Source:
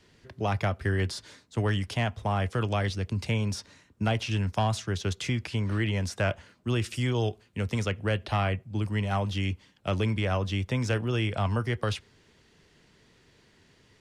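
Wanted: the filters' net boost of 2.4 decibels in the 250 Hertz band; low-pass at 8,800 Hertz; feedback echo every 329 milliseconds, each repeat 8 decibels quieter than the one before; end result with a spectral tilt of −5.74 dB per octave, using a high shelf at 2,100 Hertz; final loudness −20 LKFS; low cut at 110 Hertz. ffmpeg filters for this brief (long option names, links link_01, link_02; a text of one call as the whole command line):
ffmpeg -i in.wav -af "highpass=110,lowpass=8800,equalizer=frequency=250:width_type=o:gain=3.5,highshelf=frequency=2100:gain=-3.5,aecho=1:1:329|658|987|1316|1645:0.398|0.159|0.0637|0.0255|0.0102,volume=9.5dB" out.wav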